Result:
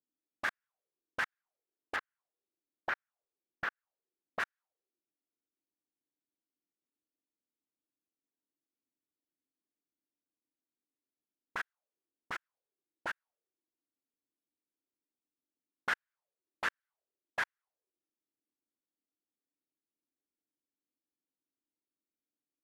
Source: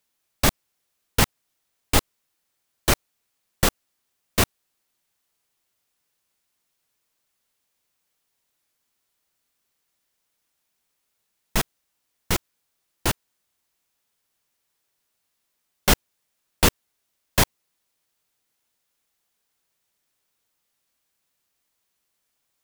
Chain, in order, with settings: 1.96–4.4 bell 9100 Hz -15 dB 1.4 oct; auto-wah 290–1600 Hz, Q 5, up, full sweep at -23 dBFS; gain -1.5 dB

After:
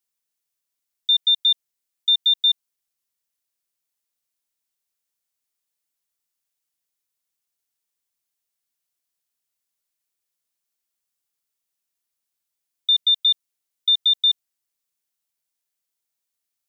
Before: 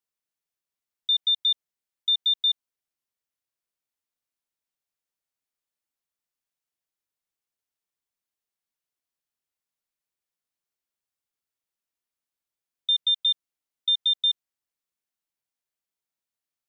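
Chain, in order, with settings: high shelf 3400 Hz +9.5 dB

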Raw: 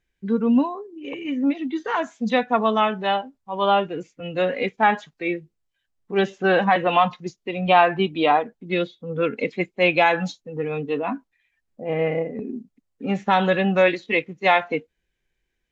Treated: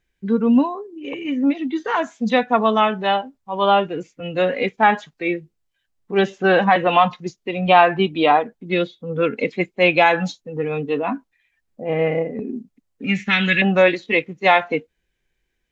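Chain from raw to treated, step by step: 13.04–13.62 EQ curve 240 Hz 0 dB, 630 Hz -17 dB, 950 Hz -16 dB, 2200 Hz +13 dB, 3400 Hz +4 dB; gain +3 dB

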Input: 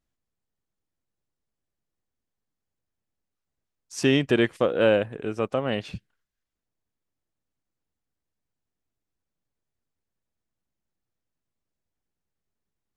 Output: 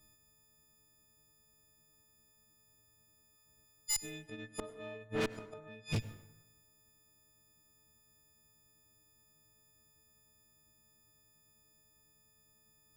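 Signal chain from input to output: frequency quantiser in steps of 6 st; low shelf 290 Hz +9 dB; flipped gate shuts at -17 dBFS, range -40 dB; tube stage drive 41 dB, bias 0.5; plate-style reverb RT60 0.96 s, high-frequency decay 0.5×, pre-delay 80 ms, DRR 15 dB; gain +11 dB

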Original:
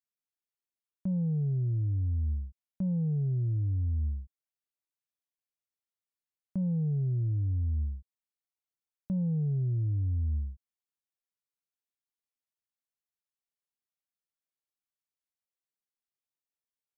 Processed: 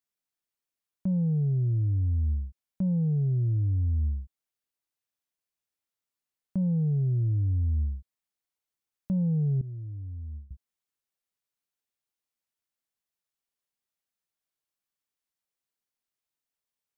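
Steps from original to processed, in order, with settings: 9.61–10.51 expander -21 dBFS; gain +3.5 dB

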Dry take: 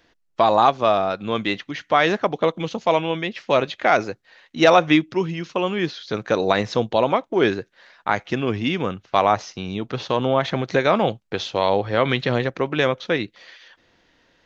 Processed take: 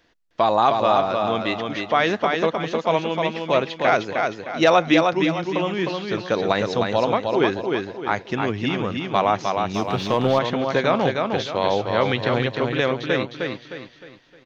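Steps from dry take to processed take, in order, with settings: feedback echo 0.308 s, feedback 38%, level -4 dB; 9.74–10.39 sample leveller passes 1; gain -2 dB

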